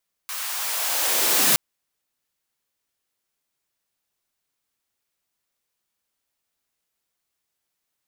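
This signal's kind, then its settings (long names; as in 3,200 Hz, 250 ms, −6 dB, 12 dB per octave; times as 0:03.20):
filter sweep on noise white, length 1.27 s highpass, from 1,100 Hz, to 120 Hz, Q 1.4, linear, gain ramp +14.5 dB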